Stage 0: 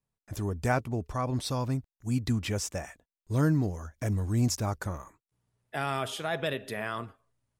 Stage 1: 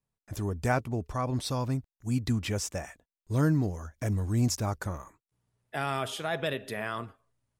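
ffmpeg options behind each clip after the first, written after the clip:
ffmpeg -i in.wav -af anull out.wav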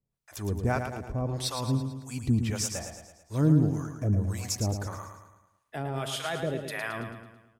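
ffmpeg -i in.wav -filter_complex "[0:a]acrossover=split=670[link_01][link_02];[link_01]aeval=exprs='val(0)*(1-1/2+1/2*cos(2*PI*1.7*n/s))':channel_layout=same[link_03];[link_02]aeval=exprs='val(0)*(1-1/2-1/2*cos(2*PI*1.7*n/s))':channel_layout=same[link_04];[link_03][link_04]amix=inputs=2:normalize=0,aecho=1:1:110|220|330|440|550|660:0.447|0.223|0.112|0.0558|0.0279|0.014,volume=4dB" out.wav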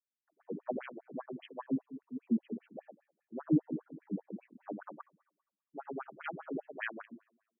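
ffmpeg -i in.wav -af "afwtdn=0.02,afftfilt=real='re*between(b*sr/1024,230*pow(2400/230,0.5+0.5*sin(2*PI*5*pts/sr))/1.41,230*pow(2400/230,0.5+0.5*sin(2*PI*5*pts/sr))*1.41)':imag='im*between(b*sr/1024,230*pow(2400/230,0.5+0.5*sin(2*PI*5*pts/sr))/1.41,230*pow(2400/230,0.5+0.5*sin(2*PI*5*pts/sr))*1.41)':win_size=1024:overlap=0.75" out.wav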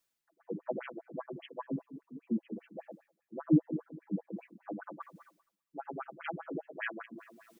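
ffmpeg -i in.wav -af "aecho=1:1:6:0.6,areverse,acompressor=mode=upward:threshold=-41dB:ratio=2.5,areverse" out.wav

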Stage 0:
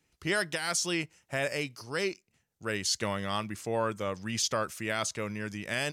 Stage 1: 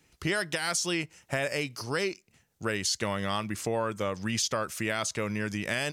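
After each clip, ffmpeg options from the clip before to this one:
ffmpeg -i in.wav -af "acompressor=threshold=-37dB:ratio=3,volume=8.5dB" out.wav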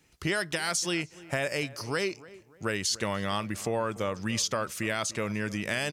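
ffmpeg -i in.wav -filter_complex "[0:a]asplit=2[link_01][link_02];[link_02]adelay=292,lowpass=frequency=1800:poles=1,volume=-18.5dB,asplit=2[link_03][link_04];[link_04]adelay=292,lowpass=frequency=1800:poles=1,volume=0.4,asplit=2[link_05][link_06];[link_06]adelay=292,lowpass=frequency=1800:poles=1,volume=0.4[link_07];[link_01][link_03][link_05][link_07]amix=inputs=4:normalize=0" out.wav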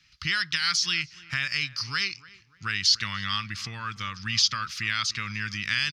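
ffmpeg -i in.wav -af "firequalizer=gain_entry='entry(120,0);entry(370,-20);entry(580,-27);entry(1200,3);entry(4900,12);entry(8000,-13)':delay=0.05:min_phase=1" out.wav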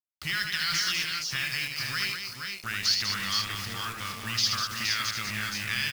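ffmpeg -i in.wav -filter_complex "[0:a]acrusher=bits=5:mix=0:aa=0.000001,asplit=2[link_01][link_02];[link_02]aecho=0:1:77|196|376|469|500:0.531|0.473|0.141|0.562|0.282[link_03];[link_01][link_03]amix=inputs=2:normalize=0,volume=-4.5dB" out.wav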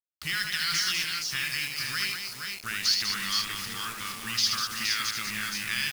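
ffmpeg -i in.wav -af "equalizer=frequency=100:width_type=o:width=0.67:gain=-10,equalizer=frequency=630:width_type=o:width=0.67:gain=-10,equalizer=frequency=10000:width_type=o:width=0.67:gain=5,acrusher=bits=6:mix=0:aa=0.000001" out.wav

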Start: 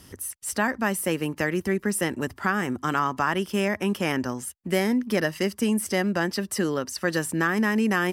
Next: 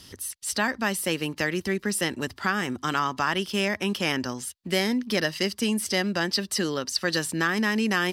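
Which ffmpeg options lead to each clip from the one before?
ffmpeg -i in.wav -af "equalizer=frequency=4100:width=1.1:gain=13,volume=-2.5dB" out.wav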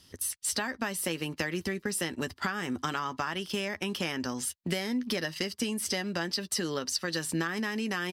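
ffmpeg -i in.wav -filter_complex "[0:a]acompressor=threshold=-30dB:ratio=16,asplit=2[link_01][link_02];[link_02]adelay=12,volume=-12dB[link_03];[link_01][link_03]amix=inputs=2:normalize=0,agate=range=-13dB:threshold=-40dB:ratio=16:detection=peak,volume=2.5dB" out.wav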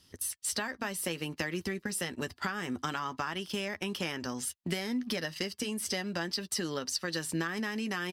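ffmpeg -i in.wav -filter_complex "[0:a]asplit=2[link_01][link_02];[link_02]aeval=exprs='sgn(val(0))*max(abs(val(0))-0.00355,0)':channel_layout=same,volume=-10dB[link_03];[link_01][link_03]amix=inputs=2:normalize=0,flanger=delay=0.7:depth=1.5:regen=-85:speed=0.62:shape=triangular" out.wav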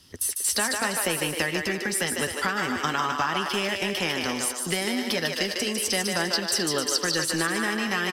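ffmpeg -i in.wav -filter_complex "[0:a]acrossover=split=330[link_01][link_02];[link_01]asoftclip=type=tanh:threshold=-39.5dB[link_03];[link_02]aecho=1:1:150|262.5|346.9|410.2|457.6:0.631|0.398|0.251|0.158|0.1[link_04];[link_03][link_04]amix=inputs=2:normalize=0,volume=8dB" out.wav

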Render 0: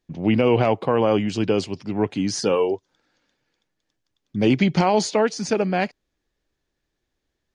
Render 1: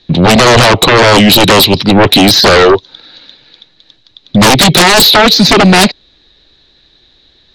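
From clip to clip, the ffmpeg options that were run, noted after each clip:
ffmpeg -i in.wav -filter_complex "[0:a]acrossover=split=290|1200|3000[link_01][link_02][link_03][link_04];[link_01]acompressor=threshold=-24dB:ratio=4[link_05];[link_02]acompressor=threshold=-20dB:ratio=4[link_06];[link_03]acompressor=threshold=-34dB:ratio=4[link_07];[link_04]acompressor=threshold=-36dB:ratio=4[link_08];[link_05][link_06][link_07][link_08]amix=inputs=4:normalize=0,lowpass=frequency=3900:width_type=q:width=15,aeval=exprs='0.447*sin(PI/2*5.62*val(0)/0.447)':channel_layout=same,volume=5.5dB" out.wav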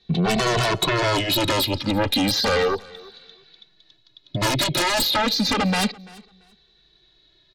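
ffmpeg -i in.wav -filter_complex "[0:a]acompressor=threshold=-7dB:ratio=6,aecho=1:1:339|678:0.0708|0.0135,asplit=2[link_01][link_02];[link_02]adelay=2.2,afreqshift=-0.31[link_03];[link_01][link_03]amix=inputs=2:normalize=1,volume=-9dB" out.wav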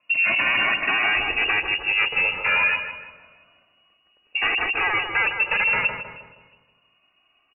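ffmpeg -i in.wav -filter_complex "[0:a]lowpass=frequency=2500:width_type=q:width=0.5098,lowpass=frequency=2500:width_type=q:width=0.6013,lowpass=frequency=2500:width_type=q:width=0.9,lowpass=frequency=2500:width_type=q:width=2.563,afreqshift=-2900,asplit=2[link_01][link_02];[link_02]adelay=157,lowpass=frequency=1200:poles=1,volume=-4.5dB,asplit=2[link_03][link_04];[link_04]adelay=157,lowpass=frequency=1200:poles=1,volume=0.51,asplit=2[link_05][link_06];[link_06]adelay=157,lowpass=frequency=1200:poles=1,volume=0.51,asplit=2[link_07][link_08];[link_08]adelay=157,lowpass=frequency=1200:poles=1,volume=0.51,asplit=2[link_09][link_10];[link_10]adelay=157,lowpass=frequency=1200:poles=1,volume=0.51,asplit=2[link_11][link_12];[link_12]adelay=157,lowpass=frequency=1200:poles=1,volume=0.51,asplit=2[link_13][link_14];[link_14]adelay=157,lowpass=frequency=1200:poles=1,volume=0.51[link_15];[link_03][link_05][link_07][link_09][link_11][link_13][link_15]amix=inputs=7:normalize=0[link_16];[link_01][link_16]amix=inputs=2:normalize=0" out.wav

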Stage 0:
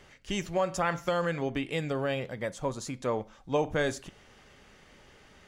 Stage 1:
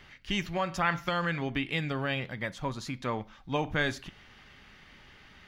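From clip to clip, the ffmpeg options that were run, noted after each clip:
ffmpeg -i in.wav -af "equalizer=frequency=500:width_type=o:width=1:gain=-9,equalizer=frequency=2000:width_type=o:width=1:gain=3,equalizer=frequency=4000:width_type=o:width=1:gain=4,equalizer=frequency=8000:width_type=o:width=1:gain=-12,volume=2dB" out.wav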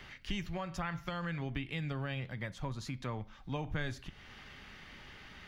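ffmpeg -i in.wav -filter_complex "[0:a]acrossover=split=130[link_01][link_02];[link_02]acompressor=threshold=-50dB:ratio=2[link_03];[link_01][link_03]amix=inputs=2:normalize=0,volume=2.5dB" out.wav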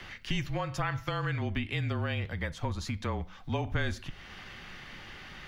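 ffmpeg -i in.wav -af "afreqshift=-30,volume=6dB" out.wav

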